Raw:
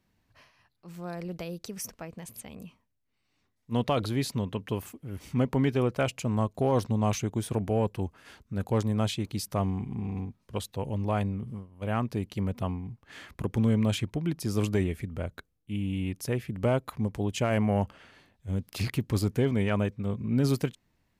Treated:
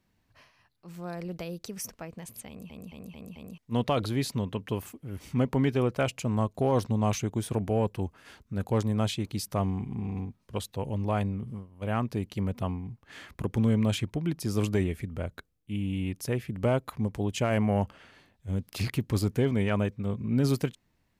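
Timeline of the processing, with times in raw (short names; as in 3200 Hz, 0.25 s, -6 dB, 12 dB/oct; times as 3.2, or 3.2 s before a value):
2.48 stutter in place 0.22 s, 5 plays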